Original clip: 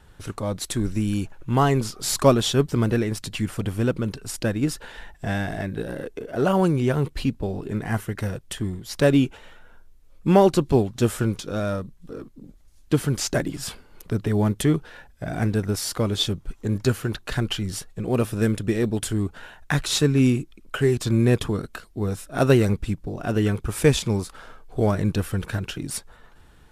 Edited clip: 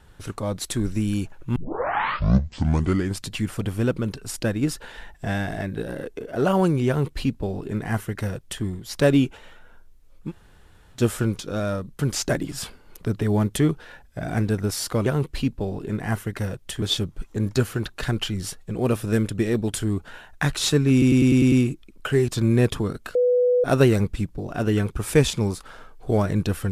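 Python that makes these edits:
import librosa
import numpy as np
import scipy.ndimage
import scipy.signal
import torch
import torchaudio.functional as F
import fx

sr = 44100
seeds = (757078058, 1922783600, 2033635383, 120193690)

y = fx.edit(x, sr, fx.tape_start(start_s=1.56, length_s=1.71),
    fx.duplicate(start_s=6.88, length_s=1.76, to_s=16.11),
    fx.room_tone_fill(start_s=10.27, length_s=0.7, crossfade_s=0.1),
    fx.cut(start_s=11.99, length_s=1.05),
    fx.stutter(start_s=20.21, slice_s=0.1, count=7),
    fx.bleep(start_s=21.84, length_s=0.49, hz=494.0, db=-15.5), tone=tone)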